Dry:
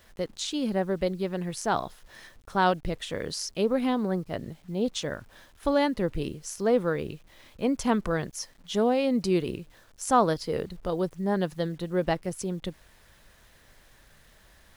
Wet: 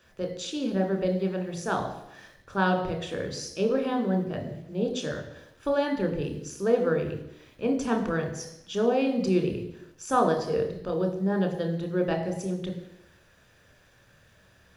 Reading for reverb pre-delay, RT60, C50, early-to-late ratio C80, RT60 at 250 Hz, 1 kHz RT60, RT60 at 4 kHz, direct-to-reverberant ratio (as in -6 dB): 24 ms, 0.85 s, 8.5 dB, 10.0 dB, 0.85 s, 0.85 s, 0.85 s, 3.5 dB